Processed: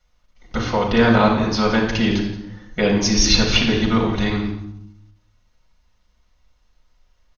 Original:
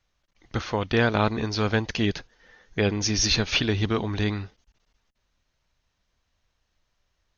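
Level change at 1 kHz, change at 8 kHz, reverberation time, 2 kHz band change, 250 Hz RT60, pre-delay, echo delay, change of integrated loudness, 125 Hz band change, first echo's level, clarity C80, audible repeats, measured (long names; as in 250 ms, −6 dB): +8.0 dB, can't be measured, 0.75 s, +5.5 dB, 1.1 s, 4 ms, 173 ms, +7.0 dB, +4.0 dB, −14.0 dB, 7.5 dB, 1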